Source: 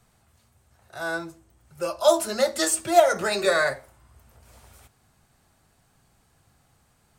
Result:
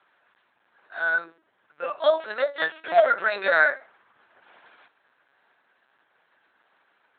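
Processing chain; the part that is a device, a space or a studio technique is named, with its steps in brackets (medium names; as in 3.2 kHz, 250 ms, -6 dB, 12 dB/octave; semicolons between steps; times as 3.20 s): talking toy (LPC vocoder at 8 kHz pitch kept; high-pass 540 Hz 12 dB/octave; peaking EQ 1.6 kHz +8.5 dB 0.55 oct)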